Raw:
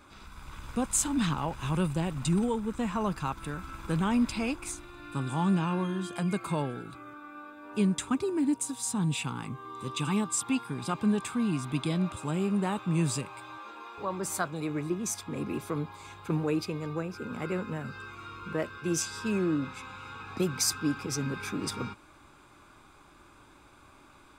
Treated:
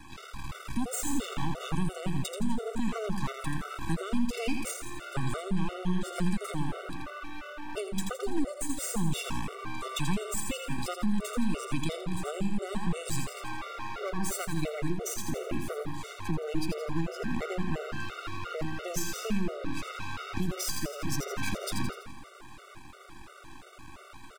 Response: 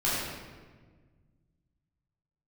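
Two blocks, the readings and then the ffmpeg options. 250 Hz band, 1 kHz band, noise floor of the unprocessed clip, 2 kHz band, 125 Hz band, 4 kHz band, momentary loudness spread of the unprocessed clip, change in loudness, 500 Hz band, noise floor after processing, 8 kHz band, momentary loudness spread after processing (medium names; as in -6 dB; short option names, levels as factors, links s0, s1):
-3.5 dB, -2.0 dB, -56 dBFS, 0.0 dB, -3.0 dB, -0.5 dB, 14 LU, -3.0 dB, -1.5 dB, -49 dBFS, -3.5 dB, 11 LU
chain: -filter_complex "[0:a]asplit=2[s0][s1];[s1]acompressor=threshold=0.00891:ratio=6,volume=1[s2];[s0][s2]amix=inputs=2:normalize=0,aeval=exprs='max(val(0),0)':c=same,asplit=2[s3][s4];[s4]aecho=0:1:83|166|249|332|415|498:0.447|0.223|0.112|0.0558|0.0279|0.014[s5];[s3][s5]amix=inputs=2:normalize=0,acrossover=split=290|3000[s6][s7][s8];[s7]acompressor=threshold=0.0178:ratio=6[s9];[s6][s9][s8]amix=inputs=3:normalize=0,alimiter=limit=0.0708:level=0:latency=1:release=226,afftfilt=real='re*gt(sin(2*PI*2.9*pts/sr)*(1-2*mod(floor(b*sr/1024/380),2)),0)':imag='im*gt(sin(2*PI*2.9*pts/sr)*(1-2*mod(floor(b*sr/1024/380),2)),0)':win_size=1024:overlap=0.75,volume=2"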